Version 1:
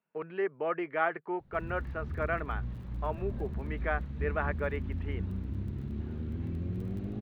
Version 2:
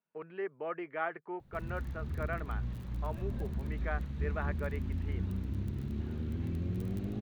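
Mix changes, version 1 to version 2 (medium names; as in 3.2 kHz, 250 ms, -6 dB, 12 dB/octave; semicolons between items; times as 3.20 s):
speech -6.0 dB; background: add treble shelf 3.9 kHz +10.5 dB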